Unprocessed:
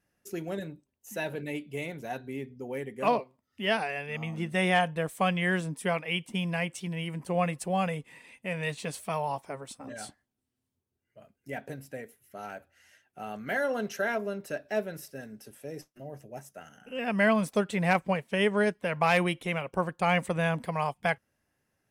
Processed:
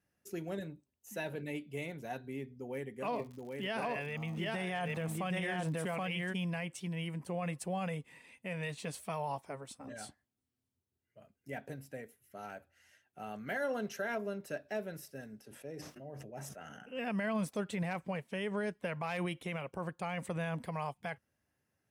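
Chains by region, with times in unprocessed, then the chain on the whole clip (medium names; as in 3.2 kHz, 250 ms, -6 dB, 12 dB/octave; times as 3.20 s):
3.13–6.32 s: delay 777 ms -3 dB + transient shaper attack -1 dB, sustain +5 dB + crackle 120 per s -41 dBFS
15.41–16.97 s: low-pass 3.5 kHz 6 dB/octave + bass shelf 130 Hz -6 dB + decay stretcher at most 25 dB/s
whole clip: high-pass 52 Hz 24 dB/octave; bass shelf 140 Hz +4 dB; peak limiter -22 dBFS; trim -5.5 dB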